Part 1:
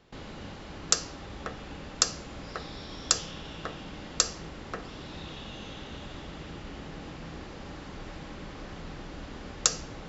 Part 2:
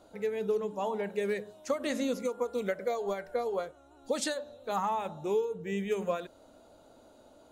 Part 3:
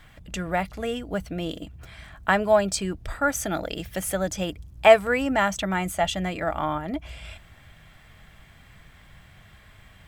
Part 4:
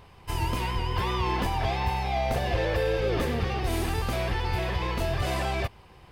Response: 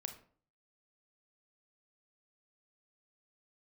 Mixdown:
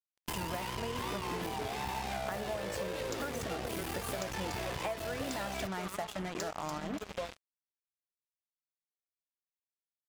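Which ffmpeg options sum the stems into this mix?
-filter_complex "[0:a]adelay=2200,volume=-10dB,asplit=2[link_01][link_02];[link_02]volume=-7dB[link_03];[1:a]asplit=2[link_04][link_05];[link_05]afreqshift=-0.44[link_06];[link_04][link_06]amix=inputs=2:normalize=1,adelay=1100,volume=1.5dB[link_07];[2:a]acompressor=threshold=-33dB:ratio=2,highshelf=frequency=2100:gain=-7.5,volume=2dB,asplit=3[link_08][link_09][link_10];[link_09]volume=-7.5dB[link_11];[link_10]volume=-22.5dB[link_12];[3:a]highshelf=frequency=11000:gain=6.5,aeval=exprs='clip(val(0),-1,0.0211)':channel_layout=same,volume=1.5dB,asplit=2[link_13][link_14];[link_14]volume=-10dB[link_15];[4:a]atrim=start_sample=2205[link_16];[link_11][link_15]amix=inputs=2:normalize=0[link_17];[link_17][link_16]afir=irnorm=-1:irlink=0[link_18];[link_03][link_12]amix=inputs=2:normalize=0,aecho=0:1:290|580|870|1160|1450:1|0.36|0.13|0.0467|0.0168[link_19];[link_01][link_07][link_08][link_13][link_18][link_19]amix=inputs=6:normalize=0,highpass=frequency=140:poles=1,acrusher=bits=4:mix=0:aa=0.5,acompressor=threshold=-35dB:ratio=6"

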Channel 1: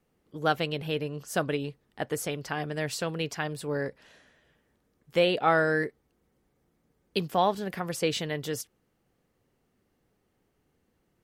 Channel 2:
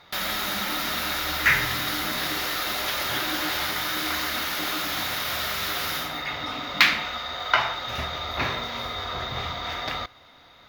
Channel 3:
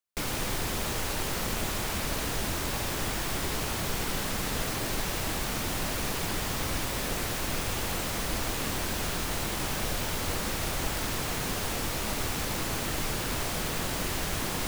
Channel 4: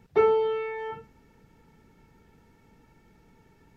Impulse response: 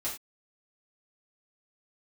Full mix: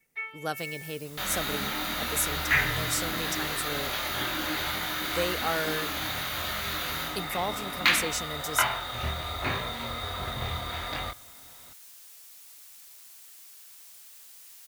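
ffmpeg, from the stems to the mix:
-filter_complex "[0:a]aexciter=amount=3.9:drive=8.3:freq=5100,volume=-7dB[link_01];[1:a]lowshelf=frequency=190:gain=6,bandreject=frequency=5300:width=5.8,flanger=delay=22.5:depth=3.3:speed=1.3,adelay=1050,volume=-1dB[link_02];[2:a]aderivative,adelay=400,volume=-15.5dB[link_03];[3:a]highpass=frequency=2100:width_type=q:width=7.7,aecho=1:1:4.5:0.9,volume=-17dB[link_04];[link_01][link_02][link_03][link_04]amix=inputs=4:normalize=0"

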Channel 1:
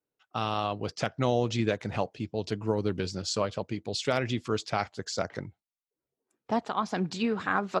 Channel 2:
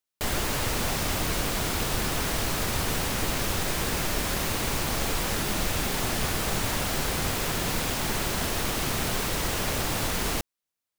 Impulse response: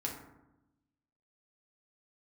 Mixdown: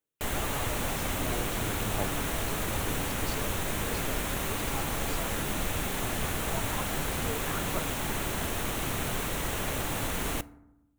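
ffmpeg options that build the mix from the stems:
-filter_complex "[0:a]aphaser=in_gain=1:out_gain=1:delay=3.9:decay=0.71:speed=0.51:type=sinusoidal,volume=-18.5dB,asplit=2[link_01][link_02];[link_02]volume=-4.5dB[link_03];[1:a]equalizer=frequency=4900:width_type=o:width=0.42:gain=-10.5,volume=-4.5dB,asplit=2[link_04][link_05];[link_05]volume=-15dB[link_06];[2:a]atrim=start_sample=2205[link_07];[link_03][link_06]amix=inputs=2:normalize=0[link_08];[link_08][link_07]afir=irnorm=-1:irlink=0[link_09];[link_01][link_04][link_09]amix=inputs=3:normalize=0"

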